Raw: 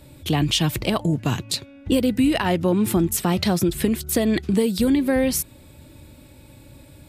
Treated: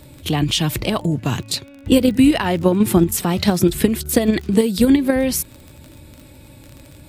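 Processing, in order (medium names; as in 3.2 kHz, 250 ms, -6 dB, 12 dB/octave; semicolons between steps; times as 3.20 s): in parallel at +2 dB: level held to a coarse grid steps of 18 dB; on the sum: vibrato 6 Hz 18 cents; crackle 28 per s -28 dBFS; pre-echo 30 ms -23 dB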